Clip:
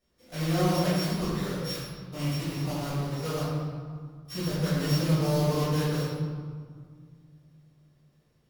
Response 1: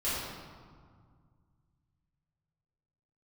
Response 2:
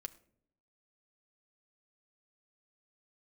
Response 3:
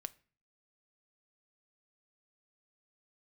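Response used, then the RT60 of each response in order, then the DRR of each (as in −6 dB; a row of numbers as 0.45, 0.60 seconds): 1; 1.9, 0.65, 0.40 seconds; −12.5, 8.0, 13.5 decibels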